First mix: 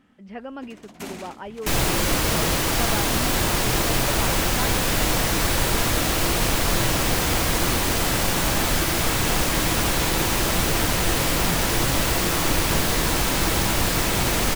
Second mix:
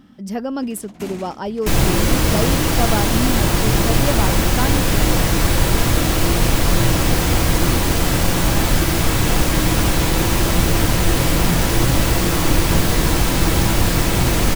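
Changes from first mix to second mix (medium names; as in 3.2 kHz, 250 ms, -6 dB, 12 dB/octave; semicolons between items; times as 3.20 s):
speech: remove four-pole ladder low-pass 3 kHz, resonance 40%; second sound: send +6.0 dB; master: add bass shelf 330 Hz +7.5 dB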